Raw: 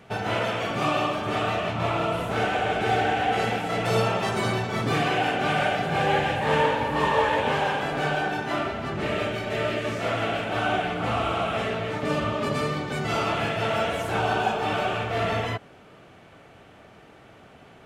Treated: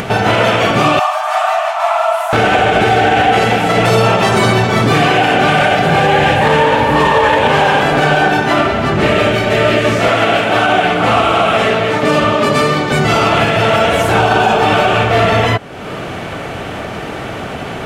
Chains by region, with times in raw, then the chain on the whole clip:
0.99–2.33 brick-wall FIR high-pass 610 Hz + bell 3000 Hz -10 dB 1.7 oct
10.08–12.92 HPF 46 Hz + low shelf 150 Hz -8.5 dB
whole clip: upward compressor, threshold -28 dBFS; maximiser +17 dB; gain -1 dB

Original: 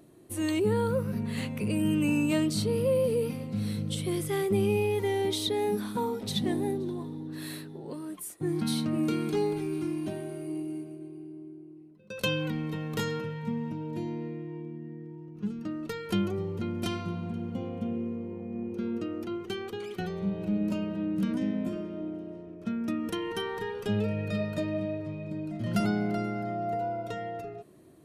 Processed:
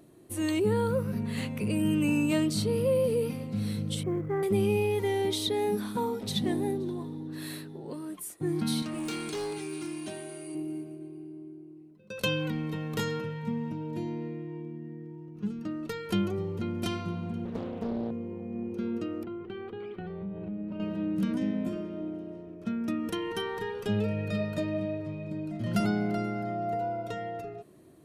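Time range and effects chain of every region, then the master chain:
4.03–4.43 inverse Chebyshev low-pass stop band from 4300 Hz, stop band 50 dB + short-mantissa float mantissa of 6-bit
8.82–10.55 steep low-pass 10000 Hz + tilt +3 dB/oct + hard clip -30.5 dBFS
17.45–18.11 HPF 94 Hz 24 dB/oct + doubler 26 ms -14 dB + Doppler distortion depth 0.85 ms
19.23–20.8 air absorption 470 m + compressor 3:1, threshold -35 dBFS
whole clip: dry

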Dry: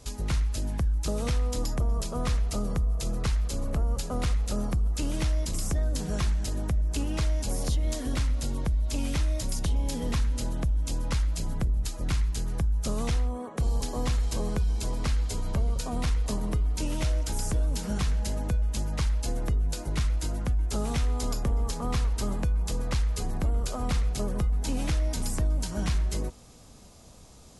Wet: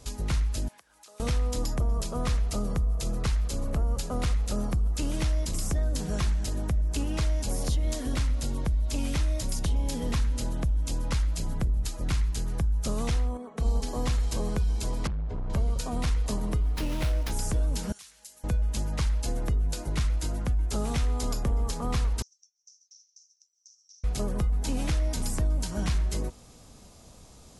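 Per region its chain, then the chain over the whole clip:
0.68–1.2 HPF 850 Hz + compressor 2.5:1, threshold -56 dBFS
13.37–13.87 high shelf 8300 Hz -6.5 dB + comb 4.5 ms, depth 62% + upward expander, over -33 dBFS
15.07–15.5 LPF 1200 Hz + hard clip -28 dBFS
16.61–17.31 high shelf 6500 Hz +6 dB + running maximum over 5 samples
17.92–18.44 differentiator + compressor 1.5:1, threshold -55 dBFS
22.22–24.04 Butterworth band-pass 5800 Hz, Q 7.7 + compressor 5:1, threshold -49 dBFS
whole clip: dry

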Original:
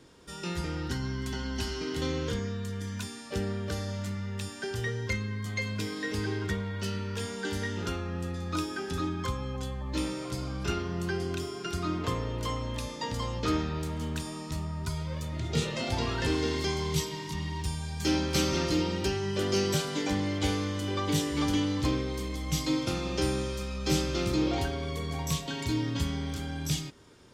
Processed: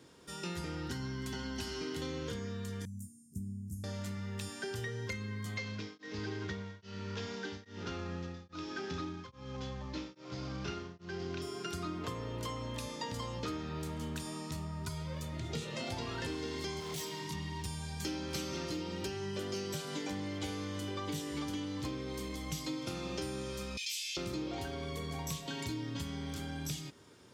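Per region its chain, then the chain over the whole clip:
2.85–3.84 inverse Chebyshev band-stop 520–3800 Hz, stop band 50 dB + upward expander, over -43 dBFS
5.57–11.42 CVSD 32 kbps + beating tremolo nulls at 1.2 Hz
16.8–17.21 HPF 200 Hz 6 dB/oct + hard clip -33.5 dBFS
23.77–24.17 elliptic high-pass 2300 Hz, stop band 50 dB + doubler 17 ms -2.5 dB + fast leveller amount 70%
whole clip: HPF 86 Hz; high shelf 11000 Hz +4.5 dB; compressor, threshold -33 dBFS; gain -2.5 dB

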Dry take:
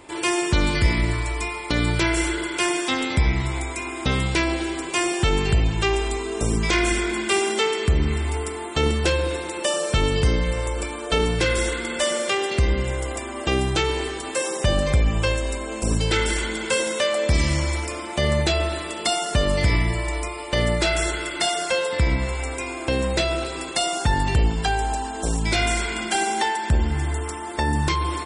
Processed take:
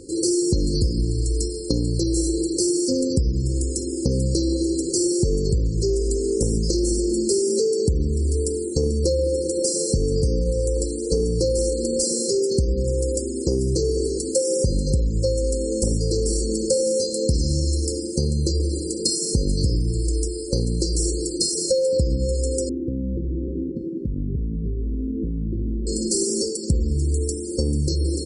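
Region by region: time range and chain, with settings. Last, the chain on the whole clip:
22.69–25.87 synth low-pass 250 Hz, resonance Q 1.9 + compressor 20:1, threshold -28 dBFS
whole clip: FFT band-reject 550–4100 Hz; dynamic EQ 550 Hz, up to +5 dB, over -40 dBFS, Q 4.8; compressor, threshold -25 dBFS; gain +7.5 dB

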